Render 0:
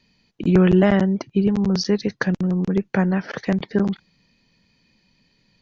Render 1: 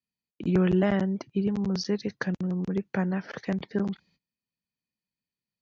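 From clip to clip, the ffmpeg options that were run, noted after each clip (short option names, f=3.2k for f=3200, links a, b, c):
-af "agate=range=-24dB:threshold=-52dB:ratio=16:detection=peak,highpass=44,volume=-8dB"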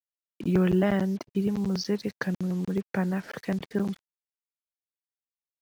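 -af "acrusher=bits=7:mix=0:aa=0.5"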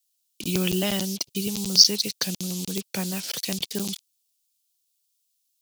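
-af "aexciter=amount=12.6:drive=6.3:freq=2.7k,volume=-3dB"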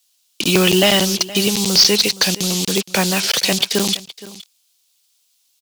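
-filter_complex "[0:a]asplit=2[a][b];[b]highpass=f=720:p=1,volume=24dB,asoftclip=type=tanh:threshold=-1dB[c];[a][c]amix=inputs=2:normalize=0,lowpass=f=3k:p=1,volume=-6dB,aecho=1:1:469:0.126,volume=2.5dB"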